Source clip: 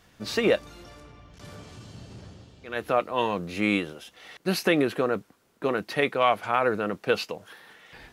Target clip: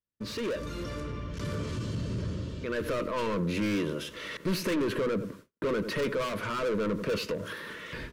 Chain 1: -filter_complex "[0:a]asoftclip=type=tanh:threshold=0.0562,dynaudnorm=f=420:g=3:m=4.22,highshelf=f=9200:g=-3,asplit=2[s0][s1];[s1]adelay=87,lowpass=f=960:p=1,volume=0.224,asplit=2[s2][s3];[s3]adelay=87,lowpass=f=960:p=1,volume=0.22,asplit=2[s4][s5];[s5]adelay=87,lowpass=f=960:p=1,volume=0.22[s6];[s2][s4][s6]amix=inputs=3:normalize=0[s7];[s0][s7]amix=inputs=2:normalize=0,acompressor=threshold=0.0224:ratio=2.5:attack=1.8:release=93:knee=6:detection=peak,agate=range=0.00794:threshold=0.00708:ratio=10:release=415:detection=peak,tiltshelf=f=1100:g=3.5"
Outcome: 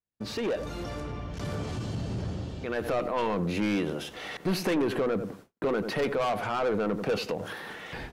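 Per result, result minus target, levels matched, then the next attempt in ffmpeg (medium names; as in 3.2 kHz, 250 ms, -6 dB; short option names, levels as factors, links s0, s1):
1 kHz band +3.0 dB; saturation: distortion -4 dB
-filter_complex "[0:a]asoftclip=type=tanh:threshold=0.0562,dynaudnorm=f=420:g=3:m=4.22,highshelf=f=9200:g=-3,asplit=2[s0][s1];[s1]adelay=87,lowpass=f=960:p=1,volume=0.224,asplit=2[s2][s3];[s3]adelay=87,lowpass=f=960:p=1,volume=0.22,asplit=2[s4][s5];[s5]adelay=87,lowpass=f=960:p=1,volume=0.22[s6];[s2][s4][s6]amix=inputs=3:normalize=0[s7];[s0][s7]amix=inputs=2:normalize=0,acompressor=threshold=0.0224:ratio=2.5:attack=1.8:release=93:knee=6:detection=peak,asuperstop=centerf=770:order=4:qfactor=2.4,agate=range=0.00794:threshold=0.00708:ratio=10:release=415:detection=peak,tiltshelf=f=1100:g=3.5"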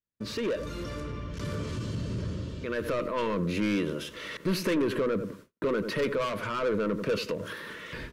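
saturation: distortion -4 dB
-filter_complex "[0:a]asoftclip=type=tanh:threshold=0.0237,dynaudnorm=f=420:g=3:m=4.22,highshelf=f=9200:g=-3,asplit=2[s0][s1];[s1]adelay=87,lowpass=f=960:p=1,volume=0.224,asplit=2[s2][s3];[s3]adelay=87,lowpass=f=960:p=1,volume=0.22,asplit=2[s4][s5];[s5]adelay=87,lowpass=f=960:p=1,volume=0.22[s6];[s2][s4][s6]amix=inputs=3:normalize=0[s7];[s0][s7]amix=inputs=2:normalize=0,acompressor=threshold=0.0224:ratio=2.5:attack=1.8:release=93:knee=6:detection=peak,asuperstop=centerf=770:order=4:qfactor=2.4,agate=range=0.00794:threshold=0.00708:ratio=10:release=415:detection=peak,tiltshelf=f=1100:g=3.5"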